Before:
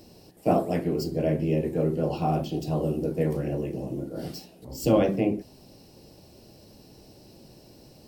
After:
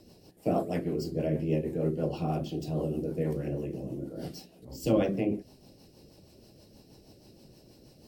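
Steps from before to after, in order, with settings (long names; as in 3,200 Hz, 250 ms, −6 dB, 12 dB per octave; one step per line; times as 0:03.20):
rotating-speaker cabinet horn 6.3 Hz
level −2.5 dB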